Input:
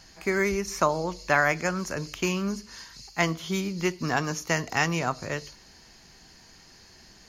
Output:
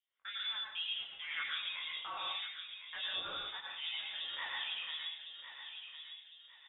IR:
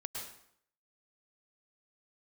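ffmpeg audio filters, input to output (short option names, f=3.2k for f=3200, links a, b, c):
-filter_complex "[0:a]highpass=370,aemphasis=mode=production:type=cd,agate=range=-30dB:threshold=-36dB:ratio=16:detection=peak,areverse,acompressor=threshold=-33dB:ratio=8,areverse,asoftclip=type=tanh:threshold=-29dB,acrossover=split=1200[a][b];[a]aeval=exprs='val(0)*(1-1/2+1/2*cos(2*PI*2.4*n/s))':c=same[c];[b]aeval=exprs='val(0)*(1-1/2-1/2*cos(2*PI*2.4*n/s))':c=same[d];[c][d]amix=inputs=2:normalize=0,flanger=delay=20:depth=2.9:speed=2.6,asplit=2[e][f];[f]adelay=1149,lowpass=f=1.8k:p=1,volume=-7.5dB,asplit=2[g][h];[h]adelay=1149,lowpass=f=1.8k:p=1,volume=0.45,asplit=2[i][j];[j]adelay=1149,lowpass=f=1.8k:p=1,volume=0.45,asplit=2[k][l];[l]adelay=1149,lowpass=f=1.8k:p=1,volume=0.45,asplit=2[m][n];[n]adelay=1149,lowpass=f=1.8k:p=1,volume=0.45[o];[e][g][i][k][m][o]amix=inputs=6:normalize=0[p];[1:a]atrim=start_sample=2205[q];[p][q]afir=irnorm=-1:irlink=0,asetrate=48000,aresample=44100,lowpass=f=3.3k:t=q:w=0.5098,lowpass=f=3.3k:t=q:w=0.6013,lowpass=f=3.3k:t=q:w=0.9,lowpass=f=3.3k:t=q:w=2.563,afreqshift=-3900,volume=7dB"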